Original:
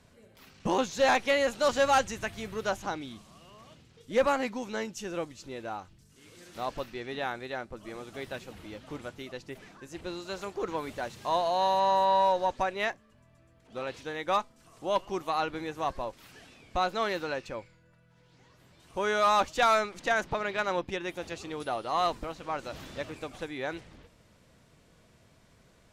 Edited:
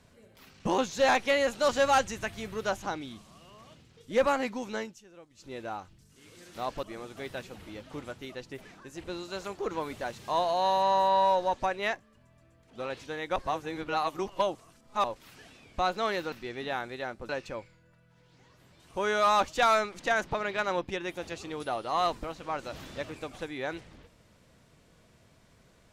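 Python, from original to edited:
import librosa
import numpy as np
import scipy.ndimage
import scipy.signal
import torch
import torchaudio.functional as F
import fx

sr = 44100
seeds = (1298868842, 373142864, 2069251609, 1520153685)

y = fx.edit(x, sr, fx.fade_down_up(start_s=4.76, length_s=0.79, db=-18.0, fade_s=0.25),
    fx.move(start_s=6.83, length_s=0.97, to_s=17.29),
    fx.reverse_span(start_s=14.33, length_s=1.68), tone=tone)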